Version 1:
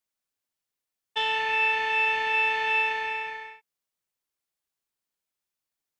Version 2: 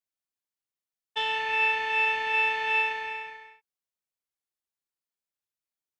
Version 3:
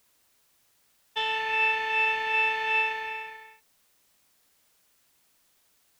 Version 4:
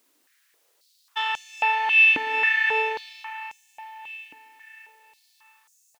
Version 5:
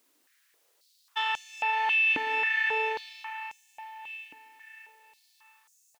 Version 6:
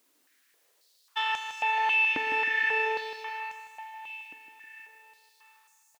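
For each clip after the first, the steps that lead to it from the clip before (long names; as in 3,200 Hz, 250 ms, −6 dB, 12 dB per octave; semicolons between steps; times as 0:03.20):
expander for the loud parts 1.5 to 1, over −38 dBFS
background noise white −67 dBFS
repeating echo 676 ms, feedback 46%, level −15 dB; high-pass on a step sequencer 3.7 Hz 290–6,700 Hz
brickwall limiter −16 dBFS, peak gain reduction 7.5 dB; level −2.5 dB
repeating echo 157 ms, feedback 48%, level −9 dB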